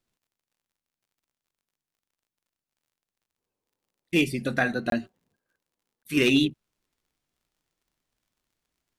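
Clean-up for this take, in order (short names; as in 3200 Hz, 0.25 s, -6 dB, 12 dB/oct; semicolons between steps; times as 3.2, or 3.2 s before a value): clip repair -12.5 dBFS; de-click; interpolate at 4.9/6.03, 22 ms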